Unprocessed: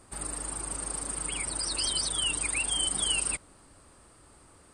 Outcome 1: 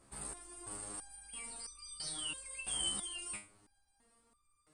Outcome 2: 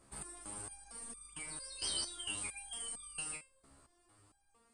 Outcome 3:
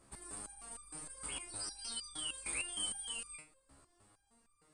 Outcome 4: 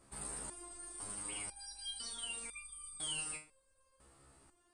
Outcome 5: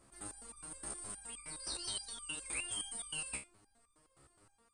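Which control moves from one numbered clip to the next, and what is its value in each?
stepped resonator, rate: 3, 4.4, 6.5, 2, 9.6 Hz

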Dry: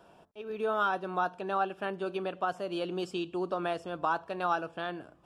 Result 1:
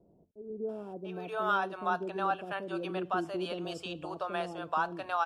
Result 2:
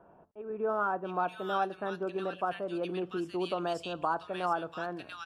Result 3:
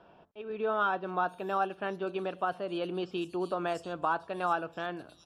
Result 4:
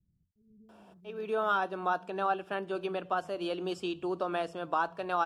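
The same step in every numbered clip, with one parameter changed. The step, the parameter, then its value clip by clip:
bands offset in time, split: 500, 1700, 4600, 150 Hz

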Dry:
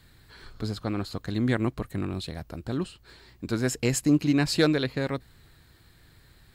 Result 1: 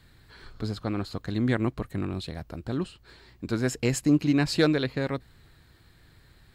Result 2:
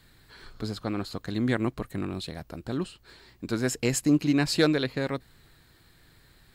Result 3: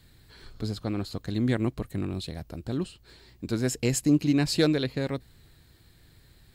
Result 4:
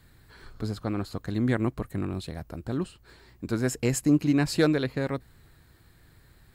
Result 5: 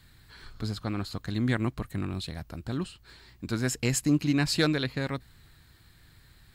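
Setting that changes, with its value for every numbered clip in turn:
bell, frequency: 16000, 74, 1300, 3800, 460 Hz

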